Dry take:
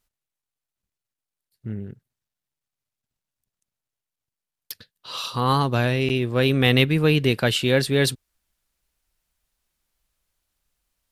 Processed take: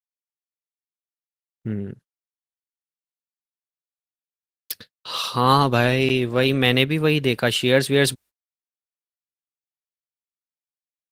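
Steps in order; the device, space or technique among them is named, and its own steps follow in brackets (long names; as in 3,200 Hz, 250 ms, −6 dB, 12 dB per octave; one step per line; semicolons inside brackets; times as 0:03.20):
video call (high-pass filter 160 Hz 6 dB per octave; automatic gain control gain up to 7 dB; noise gate −43 dBFS, range −47 dB; Opus 24 kbit/s 48,000 Hz)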